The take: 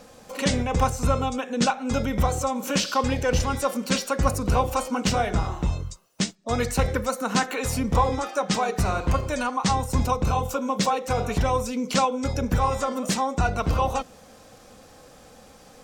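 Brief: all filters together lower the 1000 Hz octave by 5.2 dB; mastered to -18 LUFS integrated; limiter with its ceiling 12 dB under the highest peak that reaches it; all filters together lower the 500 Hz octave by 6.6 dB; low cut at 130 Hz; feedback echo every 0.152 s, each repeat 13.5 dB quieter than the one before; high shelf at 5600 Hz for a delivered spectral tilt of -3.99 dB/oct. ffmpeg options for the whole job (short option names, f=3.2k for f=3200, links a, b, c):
-af "highpass=130,equalizer=f=500:t=o:g=-6,equalizer=f=1k:t=o:g=-5,highshelf=f=5.6k:g=9,alimiter=limit=-20.5dB:level=0:latency=1,aecho=1:1:152|304:0.211|0.0444,volume=12.5dB"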